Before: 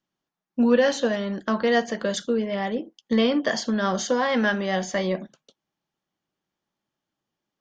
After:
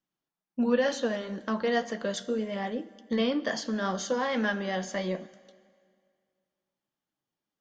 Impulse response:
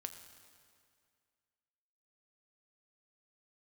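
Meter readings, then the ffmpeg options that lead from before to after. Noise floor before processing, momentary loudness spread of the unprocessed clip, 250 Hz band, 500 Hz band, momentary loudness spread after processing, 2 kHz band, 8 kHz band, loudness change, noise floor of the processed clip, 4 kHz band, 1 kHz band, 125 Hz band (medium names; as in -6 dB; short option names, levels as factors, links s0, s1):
under -85 dBFS, 8 LU, -6.5 dB, -6.0 dB, 8 LU, -6.0 dB, -6.0 dB, -6.0 dB, under -85 dBFS, -6.0 dB, -6.0 dB, -6.0 dB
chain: -filter_complex "[0:a]flanger=delay=3.8:depth=3.8:regen=-69:speed=2:shape=sinusoidal,asplit=2[s0][s1];[1:a]atrim=start_sample=2205[s2];[s1][s2]afir=irnorm=-1:irlink=0,volume=0.841[s3];[s0][s3]amix=inputs=2:normalize=0,volume=0.531"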